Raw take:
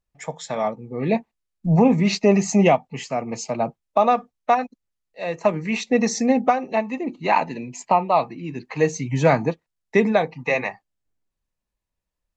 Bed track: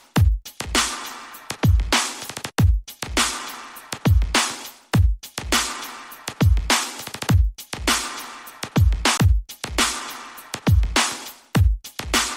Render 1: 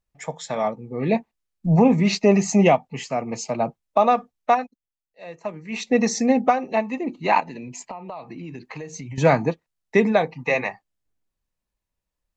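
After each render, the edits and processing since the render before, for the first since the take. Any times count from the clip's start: 4.54–5.85 s: dip -11 dB, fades 0.17 s; 7.40–9.18 s: compression 10:1, threshold -31 dBFS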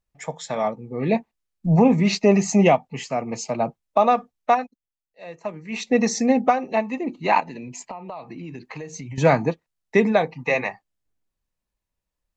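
no audible change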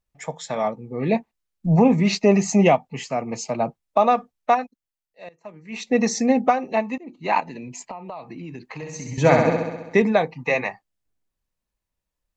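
5.29–6.01 s: fade in, from -19 dB; 6.98–7.46 s: fade in, from -19.5 dB; 8.73–10.02 s: flutter echo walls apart 11.3 m, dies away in 1.1 s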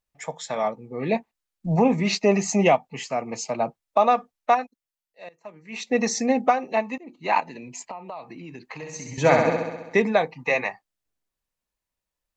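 bass shelf 290 Hz -7.5 dB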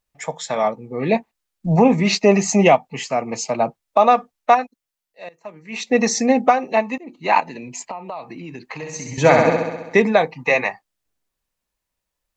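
trim +5.5 dB; peak limiter -2 dBFS, peak gain reduction 2.5 dB

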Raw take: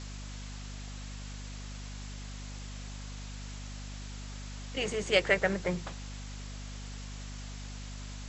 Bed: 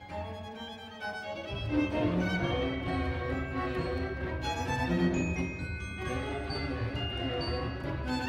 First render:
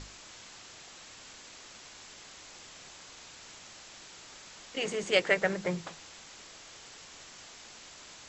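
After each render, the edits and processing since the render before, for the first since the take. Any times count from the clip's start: hum notches 50/100/150/200/250 Hz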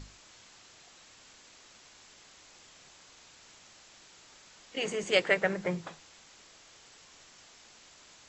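noise print and reduce 6 dB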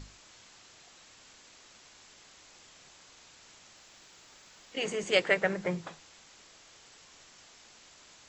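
3.76–4.73 s: companded quantiser 8-bit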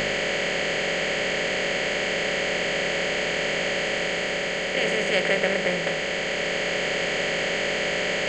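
spectral levelling over time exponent 0.2; gain riding 2 s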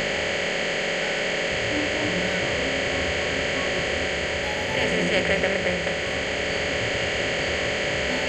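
add bed -1 dB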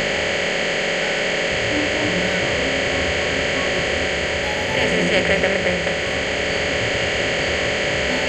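trim +4.5 dB

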